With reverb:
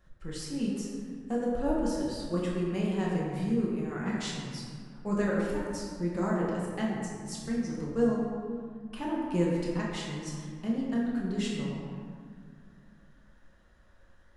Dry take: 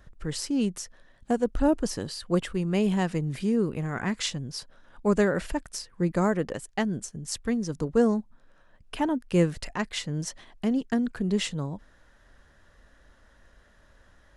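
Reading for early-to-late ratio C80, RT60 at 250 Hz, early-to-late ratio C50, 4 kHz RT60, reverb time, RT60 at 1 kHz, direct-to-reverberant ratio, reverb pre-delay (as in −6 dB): 1.0 dB, 3.0 s, −0.5 dB, 1.1 s, 2.2 s, 2.2 s, −5.5 dB, 5 ms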